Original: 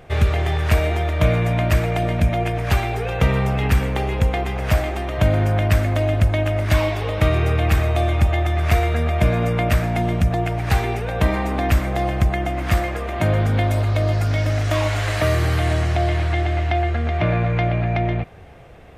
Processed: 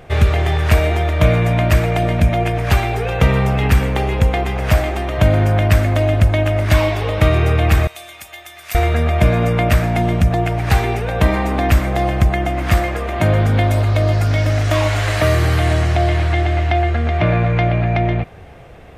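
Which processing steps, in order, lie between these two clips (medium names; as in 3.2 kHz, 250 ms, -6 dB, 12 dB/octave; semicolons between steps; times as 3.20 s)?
7.87–8.75 s: differentiator; trim +4 dB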